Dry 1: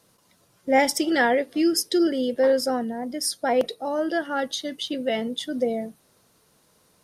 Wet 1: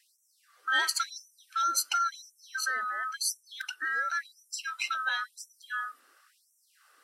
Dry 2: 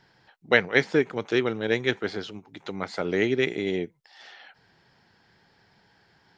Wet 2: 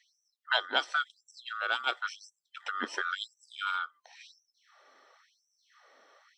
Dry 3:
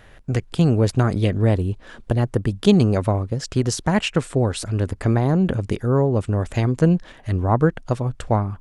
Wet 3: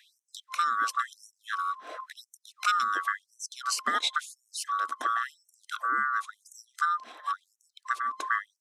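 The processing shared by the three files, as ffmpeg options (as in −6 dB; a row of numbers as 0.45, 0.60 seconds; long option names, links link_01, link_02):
-filter_complex "[0:a]afftfilt=real='real(if(lt(b,960),b+48*(1-2*mod(floor(b/48),2)),b),0)':imag='imag(if(lt(b,960),b+48*(1-2*mod(floor(b/48),2)),b),0)':win_size=2048:overlap=0.75,highshelf=frequency=4300:gain=-6.5,acrossover=split=270|3000[link_01][link_02][link_03];[link_02]acompressor=threshold=-34dB:ratio=2.5[link_04];[link_01][link_04][link_03]amix=inputs=3:normalize=0,afftfilt=real='re*gte(b*sr/1024,210*pow(5600/210,0.5+0.5*sin(2*PI*0.95*pts/sr)))':imag='im*gte(b*sr/1024,210*pow(5600/210,0.5+0.5*sin(2*PI*0.95*pts/sr)))':win_size=1024:overlap=0.75,volume=1.5dB"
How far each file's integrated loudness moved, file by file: −7.0, −7.5, −9.5 LU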